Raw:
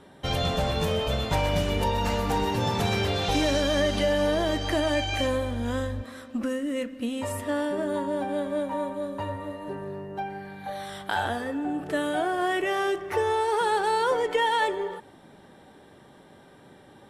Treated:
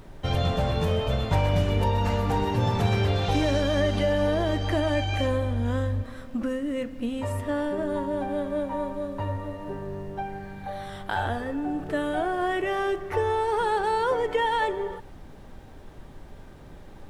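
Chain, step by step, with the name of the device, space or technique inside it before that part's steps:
car interior (parametric band 100 Hz +7 dB 0.77 octaves; high-shelf EQ 3,300 Hz −8 dB; brown noise bed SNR 17 dB)

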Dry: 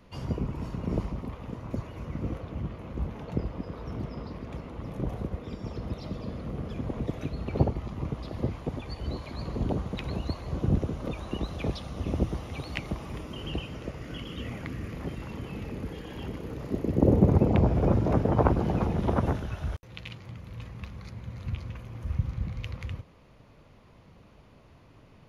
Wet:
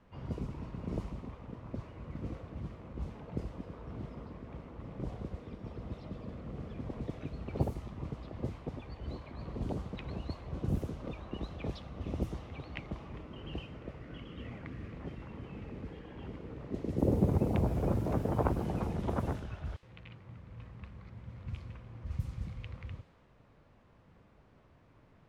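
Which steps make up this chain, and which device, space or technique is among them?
cassette deck with a dynamic noise filter (white noise bed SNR 24 dB; low-pass that shuts in the quiet parts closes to 1,500 Hz, open at −20.5 dBFS)
level −7.5 dB

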